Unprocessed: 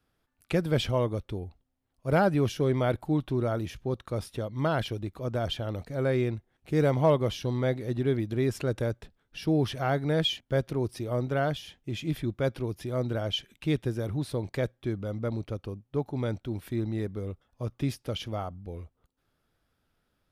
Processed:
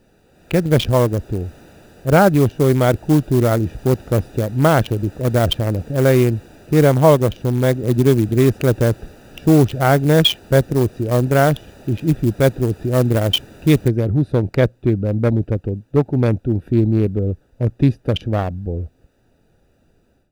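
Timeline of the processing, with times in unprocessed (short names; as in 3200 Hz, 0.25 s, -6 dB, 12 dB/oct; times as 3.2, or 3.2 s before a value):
7.83–8.29 three-band squash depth 40%
13.88 noise floor step -41 dB -63 dB
whole clip: Wiener smoothing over 41 samples; AGC gain up to 16.5 dB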